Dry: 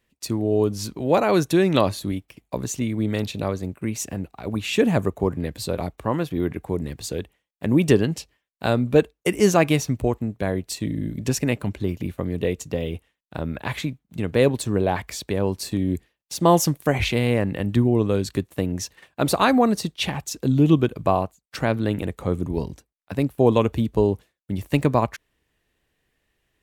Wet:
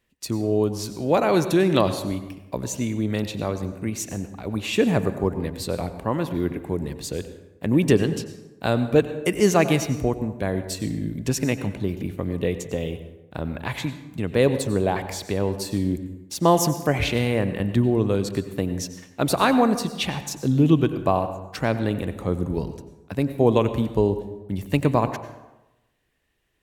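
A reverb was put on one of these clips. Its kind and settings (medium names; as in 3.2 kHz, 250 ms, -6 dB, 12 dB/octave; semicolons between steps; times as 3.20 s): plate-style reverb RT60 1 s, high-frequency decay 0.6×, pre-delay 80 ms, DRR 10.5 dB; trim -1 dB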